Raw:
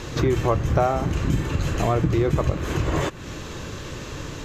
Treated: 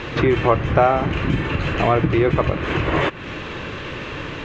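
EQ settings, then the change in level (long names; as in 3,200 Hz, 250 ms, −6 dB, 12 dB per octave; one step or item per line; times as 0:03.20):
low-pass with resonance 2,600 Hz, resonance Q 1.7
low-shelf EQ 140 Hz −8 dB
+5.5 dB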